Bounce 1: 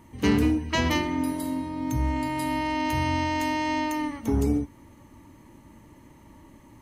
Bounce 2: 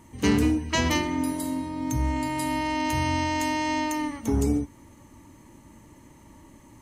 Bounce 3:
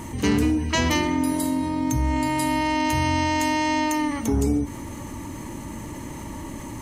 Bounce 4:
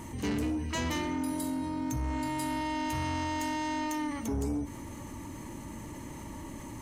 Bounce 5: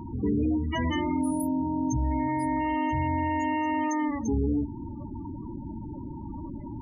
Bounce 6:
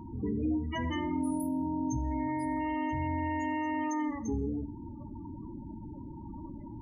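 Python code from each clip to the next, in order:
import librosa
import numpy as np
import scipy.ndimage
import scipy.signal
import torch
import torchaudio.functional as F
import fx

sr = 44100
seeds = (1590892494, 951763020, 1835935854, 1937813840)

y1 = fx.peak_eq(x, sr, hz=7500.0, db=7.5, octaves=0.95)
y2 = fx.env_flatten(y1, sr, amount_pct=50)
y3 = 10.0 ** (-18.5 / 20.0) * np.tanh(y2 / 10.0 ** (-18.5 / 20.0))
y3 = y3 * 10.0 ** (-7.5 / 20.0)
y4 = fx.spec_topn(y3, sr, count=16)
y4 = y4 * 10.0 ** (6.0 / 20.0)
y5 = fx.rev_plate(y4, sr, seeds[0], rt60_s=0.6, hf_ratio=0.75, predelay_ms=0, drr_db=12.5)
y5 = y5 * 10.0 ** (-6.0 / 20.0)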